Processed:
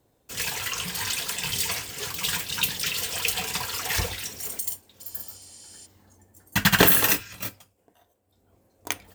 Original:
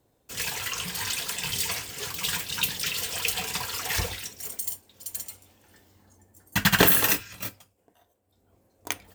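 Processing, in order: 4.18–4.59 zero-crossing step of -42 dBFS; 5.07–5.83 spectral repair 1800–11000 Hz before; gain +1.5 dB

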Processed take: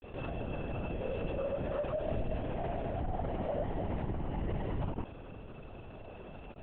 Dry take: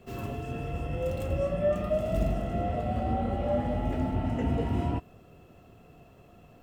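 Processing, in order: grains, pitch spread up and down by 0 st; LPC vocoder at 8 kHz whisper; fast leveller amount 50%; gain -7.5 dB

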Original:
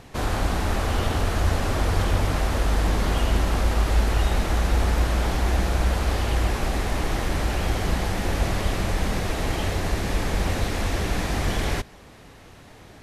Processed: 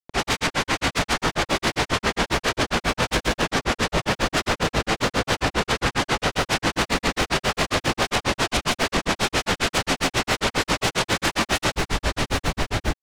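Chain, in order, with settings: LPF 5600 Hz 12 dB/oct; low shelf 83 Hz +10.5 dB; limiter -18.5 dBFS, peak gain reduction 14.5 dB; sine folder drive 18 dB, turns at -18.5 dBFS; crackle 380/s -30 dBFS; doubler 18 ms -11 dB; diffused feedback echo 0.715 s, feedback 60%, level -5.5 dB; grains 0.1 s, grains 7.4/s, pitch spread up and down by 0 st; fast leveller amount 50%

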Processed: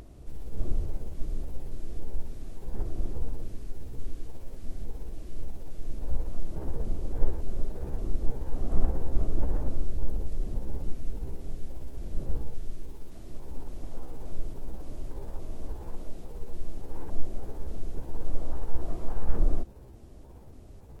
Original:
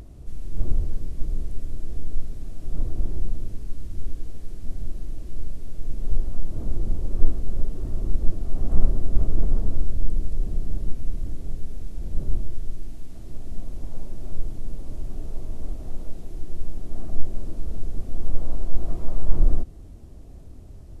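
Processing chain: trilling pitch shifter +5 st, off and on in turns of 0.285 s; tone controls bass -6 dB, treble -2 dB

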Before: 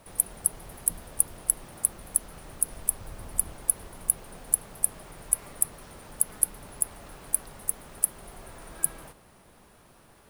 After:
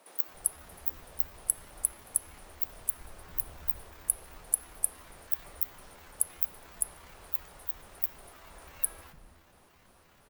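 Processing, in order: trilling pitch shifter +9 st, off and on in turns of 0.17 s; on a send at -18 dB: reverb RT60 1.8 s, pre-delay 3 ms; on the sum: dynamic EQ 150 Hz, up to -5 dB, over -59 dBFS, Q 0.73; bands offset in time highs, lows 0.28 s, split 250 Hz; gain -4 dB

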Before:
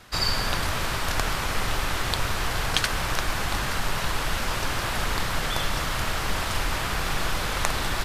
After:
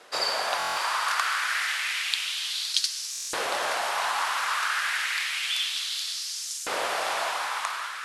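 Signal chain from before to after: ending faded out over 0.89 s; 0.61–1.52 HPF 250 Hz 12 dB/oct; diffused feedback echo 0.499 s, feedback 44%, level -6 dB; LFO high-pass saw up 0.3 Hz 450–7000 Hz; steep low-pass 12000 Hz 72 dB/oct; stuck buffer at 0.58/3.11, samples 1024, times 7; gain -2 dB

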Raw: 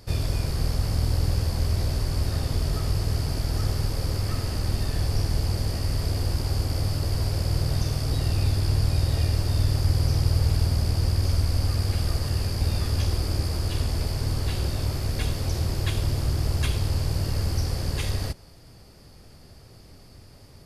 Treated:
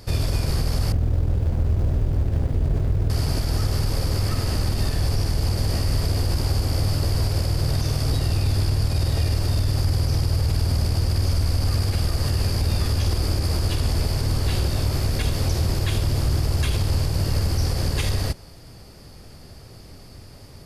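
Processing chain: 0.92–3.1 median filter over 41 samples; limiter -18.5 dBFS, peak gain reduction 8 dB; gain +5.5 dB

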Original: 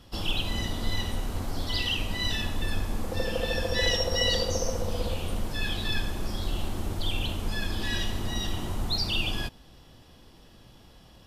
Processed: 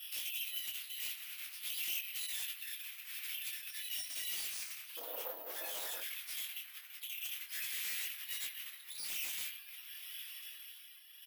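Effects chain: tremolo triangle 0.61 Hz, depth 75%; negative-ratio compressor -39 dBFS, ratio -1; comb 6.3 ms, depth 71%; reverb RT60 3.5 s, pre-delay 64 ms, DRR 3 dB; reverb removal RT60 0.79 s; LPF 7800 Hz 24 dB/oct; wavefolder -32 dBFS; ladder high-pass 2100 Hz, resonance 50%, from 4.96 s 480 Hz, from 6 s 1900 Hz; careless resampling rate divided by 3×, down none, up zero stuff; detuned doubles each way 17 cents; gain +4 dB

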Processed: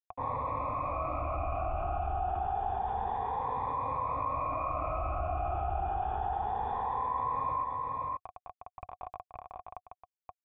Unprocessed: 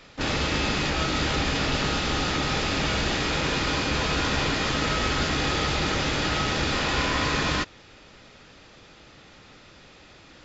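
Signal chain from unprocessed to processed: moving spectral ripple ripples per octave 1, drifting +0.28 Hz, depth 18 dB; bit-crush 6-bit; vocal tract filter a; resonant low shelf 130 Hz +11.5 dB, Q 1.5; echo 0.526 s -10.5 dB; fast leveller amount 70%

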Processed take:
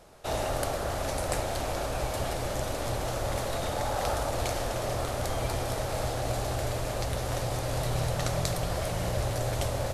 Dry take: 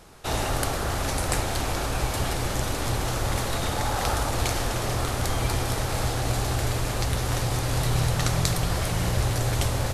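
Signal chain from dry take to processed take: bell 600 Hz +9.5 dB 0.64 oct; gain -6.5 dB

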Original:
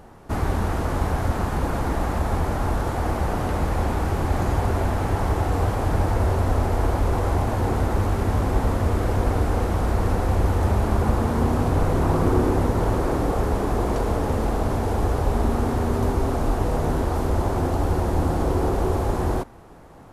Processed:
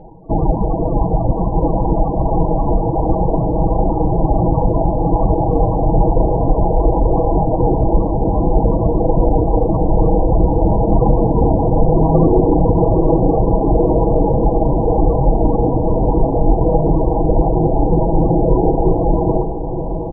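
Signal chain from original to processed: notches 50/100/150/200/250/300/350/400 Hz; reverb removal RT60 0.78 s; in parallel at -9 dB: crossover distortion -39 dBFS; on the sum: band shelf 2800 Hz -15 dB 2.5 oct; loudest bins only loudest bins 32; air absorption 290 m; comb 6.2 ms, depth 85%; diffused feedback echo 0.772 s, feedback 74%, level -10 dB; maximiser +9 dB; gain -1 dB

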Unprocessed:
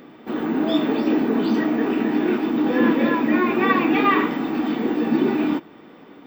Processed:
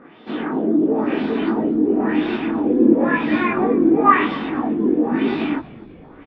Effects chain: LFO low-pass sine 0.98 Hz 340–4000 Hz; chorus voices 2, 1.2 Hz, delay 21 ms, depth 3.3 ms; frequency-shifting echo 0.248 s, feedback 52%, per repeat -62 Hz, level -21 dB; gain +2.5 dB

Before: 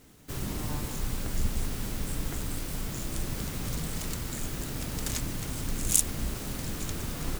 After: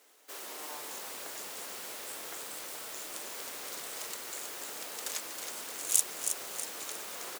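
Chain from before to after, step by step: HPF 460 Hz 24 dB/oct; on a send: frequency-shifting echo 0.32 s, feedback 46%, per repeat -90 Hz, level -7 dB; on the sum: gain -2.5 dB

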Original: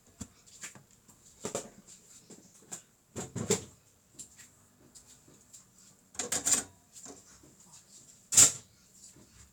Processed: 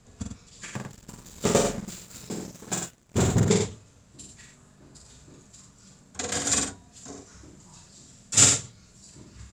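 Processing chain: LPF 6500 Hz 12 dB/oct; low shelf 180 Hz +8 dB; 0.74–3.4 sample leveller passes 3; loudspeakers at several distances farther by 16 m -4 dB, 33 m -6 dB; gain +5 dB

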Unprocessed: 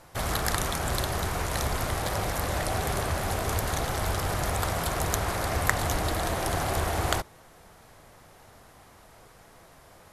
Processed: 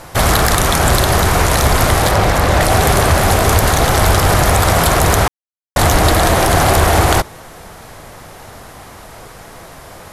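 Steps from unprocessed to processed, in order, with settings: 2.11–2.61 high shelf 6700 Hz -9.5 dB; soft clip -15 dBFS, distortion -20 dB; 5.28–5.76 mute; maximiser +18.5 dB; gain -1 dB

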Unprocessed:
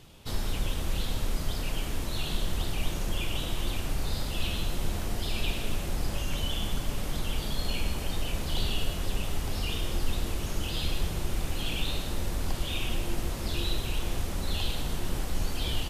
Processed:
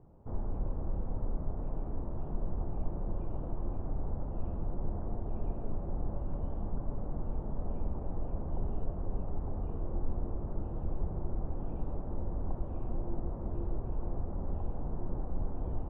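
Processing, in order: inverse Chebyshev low-pass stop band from 5400 Hz, stop band 80 dB; gain -4 dB

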